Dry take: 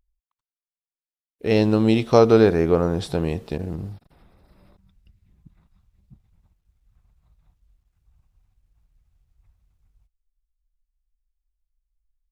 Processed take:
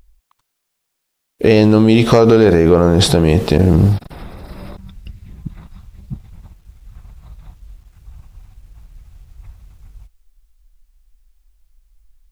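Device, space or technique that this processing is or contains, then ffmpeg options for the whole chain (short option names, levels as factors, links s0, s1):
loud club master: -af "acompressor=threshold=0.0891:ratio=3,asoftclip=type=hard:threshold=0.2,alimiter=level_in=15:limit=0.891:release=50:level=0:latency=1,volume=0.891"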